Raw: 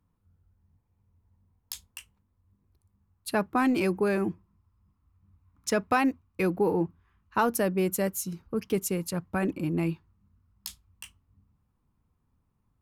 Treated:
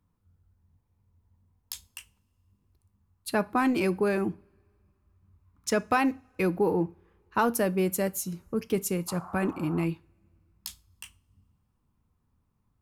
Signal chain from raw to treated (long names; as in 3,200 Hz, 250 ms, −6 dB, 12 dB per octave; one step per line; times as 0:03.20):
coupled-rooms reverb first 0.33 s, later 2.5 s, from −28 dB, DRR 16 dB
0:09.07–0:09.84: noise in a band 680–1,300 Hz −45 dBFS